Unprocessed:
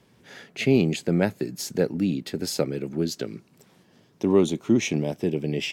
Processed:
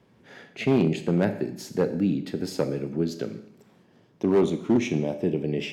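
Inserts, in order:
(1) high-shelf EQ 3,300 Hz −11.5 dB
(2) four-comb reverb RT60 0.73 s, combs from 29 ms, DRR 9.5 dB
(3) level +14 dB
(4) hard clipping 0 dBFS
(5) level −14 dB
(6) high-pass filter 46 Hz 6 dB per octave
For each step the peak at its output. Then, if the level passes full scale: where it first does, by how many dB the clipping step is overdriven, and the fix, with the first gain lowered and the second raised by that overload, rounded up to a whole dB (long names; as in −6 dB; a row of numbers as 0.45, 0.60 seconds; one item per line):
−7.0, −6.5, +7.5, 0.0, −14.0, −12.5 dBFS
step 3, 7.5 dB
step 3 +6 dB, step 5 −6 dB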